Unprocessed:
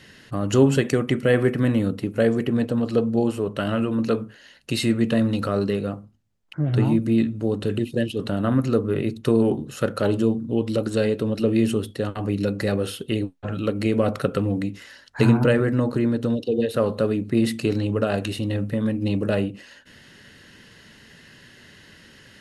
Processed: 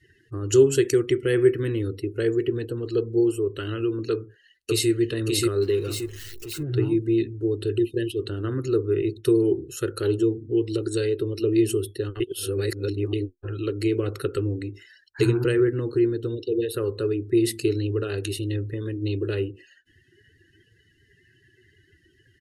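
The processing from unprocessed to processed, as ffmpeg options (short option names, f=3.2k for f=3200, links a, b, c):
-filter_complex "[0:a]asplit=2[a][b];[b]afade=t=in:st=4.11:d=0.01,afade=t=out:st=4.89:d=0.01,aecho=0:1:580|1160|1740|2320:0.944061|0.283218|0.0849655|0.0254896[c];[a][c]amix=inputs=2:normalize=0,asettb=1/sr,asplit=3[d][e][f];[d]atrim=end=5.624[g];[e]atrim=start=5.62:end=6.63,asetpts=PTS-STARTPTS,afade=t=in:d=0.004:c=qsin,afade=t=out:st=1.006:d=0.004:c=qsin,aeval=exprs='val(0)+0.5*0.0282*sgn(val(0))':c=same[h];[f]atrim=start=6.626[i];[g][h]acrossfade=d=0.004:c1=hsin:c2=qsin[j];[j][i]acrossfade=d=0.004:c1=qsin:c2=hsin,asplit=3[k][l][m];[k]atrim=end=12.202[n];[l]atrim=start=12.198:end=13.132,asetpts=PTS-STARTPTS,areverse[o];[m]atrim=start=13.128[p];[n][o]acrossfade=d=0.004:c1=hsin:c2=hsin[q];[q][p]acrossfade=d=0.004:c1=hsin:c2=hsin,highshelf=f=9.5k:g=7.5,afftdn=nr=24:nf=-43,firequalizer=gain_entry='entry(100,0);entry(210,-23);entry(360,8);entry(610,-21);entry(1400,-6);entry(5700,3)':delay=0.05:min_phase=1"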